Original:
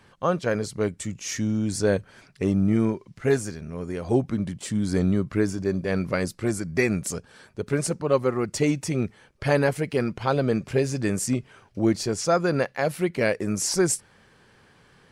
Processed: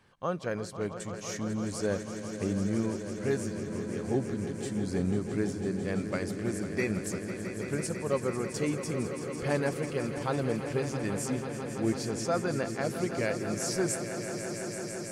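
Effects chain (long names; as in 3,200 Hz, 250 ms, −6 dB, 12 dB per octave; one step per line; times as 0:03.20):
echo that builds up and dies away 166 ms, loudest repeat 5, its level −12 dB
level −8.5 dB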